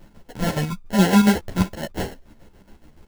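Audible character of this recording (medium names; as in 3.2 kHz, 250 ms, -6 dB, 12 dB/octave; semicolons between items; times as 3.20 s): aliases and images of a low sample rate 1.2 kHz, jitter 0%; chopped level 7.1 Hz, depth 60%, duty 55%; a shimmering, thickened sound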